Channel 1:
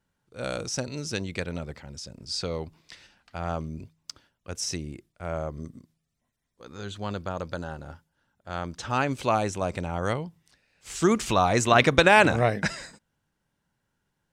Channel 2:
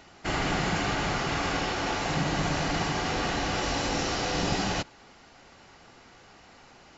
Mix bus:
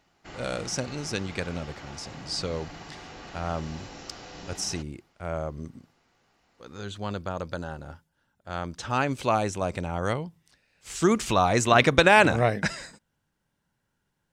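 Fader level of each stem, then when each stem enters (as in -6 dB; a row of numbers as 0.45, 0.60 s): 0.0, -15.0 dB; 0.00, 0.00 s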